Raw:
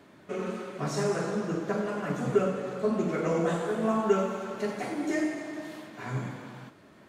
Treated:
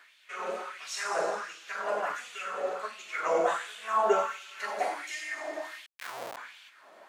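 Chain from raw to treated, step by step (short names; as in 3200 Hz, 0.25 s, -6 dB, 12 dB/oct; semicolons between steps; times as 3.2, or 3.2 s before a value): 5.86–6.37 Schmitt trigger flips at -34.5 dBFS; LFO high-pass sine 1.4 Hz 610–3000 Hz; gain +1 dB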